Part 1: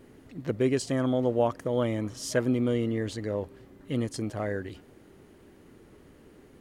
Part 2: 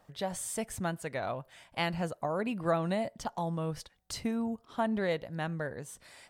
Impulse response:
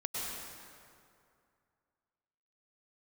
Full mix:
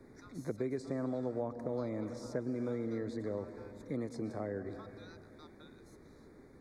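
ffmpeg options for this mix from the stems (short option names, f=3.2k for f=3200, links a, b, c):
-filter_complex "[0:a]volume=-4.5dB,asplit=2[a][b];[b]volume=-14dB[c];[1:a]highpass=800,aeval=exprs='val(0)*sin(2*PI*2000*n/s)':c=same,volume=-12.5dB[d];[2:a]atrim=start_sample=2205[e];[c][e]afir=irnorm=-1:irlink=0[f];[a][d][f]amix=inputs=3:normalize=0,asuperstop=centerf=2900:order=12:qfactor=2.6,highshelf=f=7k:g=-11,acrossover=split=180|400|1100[g][h][i][j];[g]acompressor=threshold=-49dB:ratio=4[k];[h]acompressor=threshold=-39dB:ratio=4[l];[i]acompressor=threshold=-41dB:ratio=4[m];[j]acompressor=threshold=-57dB:ratio=4[n];[k][l][m][n]amix=inputs=4:normalize=0"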